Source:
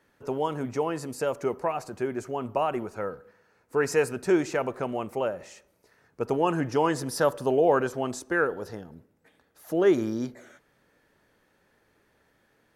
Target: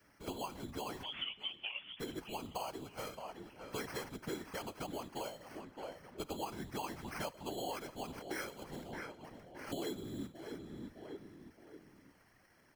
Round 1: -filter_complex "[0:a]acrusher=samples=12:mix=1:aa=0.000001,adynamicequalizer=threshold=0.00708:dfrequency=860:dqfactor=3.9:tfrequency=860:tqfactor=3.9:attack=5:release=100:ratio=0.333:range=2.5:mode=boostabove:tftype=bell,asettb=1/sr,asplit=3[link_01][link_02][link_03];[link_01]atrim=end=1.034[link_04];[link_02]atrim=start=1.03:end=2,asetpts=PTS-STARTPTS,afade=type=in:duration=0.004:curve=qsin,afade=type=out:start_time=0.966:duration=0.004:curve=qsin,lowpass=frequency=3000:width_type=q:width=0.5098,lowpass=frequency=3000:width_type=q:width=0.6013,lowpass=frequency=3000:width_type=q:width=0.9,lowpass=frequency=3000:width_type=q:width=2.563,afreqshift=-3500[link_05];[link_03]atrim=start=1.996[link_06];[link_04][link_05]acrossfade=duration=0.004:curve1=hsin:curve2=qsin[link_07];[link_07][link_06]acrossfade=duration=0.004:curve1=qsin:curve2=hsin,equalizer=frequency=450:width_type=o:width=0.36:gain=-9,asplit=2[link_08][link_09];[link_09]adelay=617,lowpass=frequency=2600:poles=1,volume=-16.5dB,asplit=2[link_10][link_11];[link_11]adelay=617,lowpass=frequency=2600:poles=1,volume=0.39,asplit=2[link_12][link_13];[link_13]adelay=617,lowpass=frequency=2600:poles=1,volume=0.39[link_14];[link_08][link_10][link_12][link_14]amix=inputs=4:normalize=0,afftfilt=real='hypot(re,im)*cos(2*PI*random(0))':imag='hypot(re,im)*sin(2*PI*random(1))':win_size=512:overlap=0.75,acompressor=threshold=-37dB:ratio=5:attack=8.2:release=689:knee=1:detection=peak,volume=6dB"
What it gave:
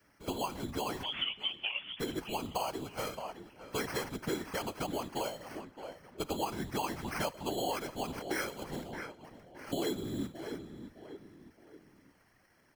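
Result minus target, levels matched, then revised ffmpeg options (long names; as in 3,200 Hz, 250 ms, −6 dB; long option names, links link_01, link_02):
downward compressor: peak gain reduction −6.5 dB
-filter_complex "[0:a]acrusher=samples=12:mix=1:aa=0.000001,adynamicequalizer=threshold=0.00708:dfrequency=860:dqfactor=3.9:tfrequency=860:tqfactor=3.9:attack=5:release=100:ratio=0.333:range=2.5:mode=boostabove:tftype=bell,asettb=1/sr,asplit=3[link_01][link_02][link_03];[link_01]atrim=end=1.034[link_04];[link_02]atrim=start=1.03:end=2,asetpts=PTS-STARTPTS,afade=type=in:duration=0.004:curve=qsin,afade=type=out:start_time=0.966:duration=0.004:curve=qsin,lowpass=frequency=3000:width_type=q:width=0.5098,lowpass=frequency=3000:width_type=q:width=0.6013,lowpass=frequency=3000:width_type=q:width=0.9,lowpass=frequency=3000:width_type=q:width=2.563,afreqshift=-3500[link_05];[link_03]atrim=start=1.996[link_06];[link_04][link_05]acrossfade=duration=0.004:curve1=hsin:curve2=qsin[link_07];[link_07][link_06]acrossfade=duration=0.004:curve1=qsin:curve2=hsin,equalizer=frequency=450:width_type=o:width=0.36:gain=-9,asplit=2[link_08][link_09];[link_09]adelay=617,lowpass=frequency=2600:poles=1,volume=-16.5dB,asplit=2[link_10][link_11];[link_11]adelay=617,lowpass=frequency=2600:poles=1,volume=0.39,asplit=2[link_12][link_13];[link_13]adelay=617,lowpass=frequency=2600:poles=1,volume=0.39[link_14];[link_08][link_10][link_12][link_14]amix=inputs=4:normalize=0,afftfilt=real='hypot(re,im)*cos(2*PI*random(0))':imag='hypot(re,im)*sin(2*PI*random(1))':win_size=512:overlap=0.75,acompressor=threshold=-45dB:ratio=5:attack=8.2:release=689:knee=1:detection=peak,volume=6dB"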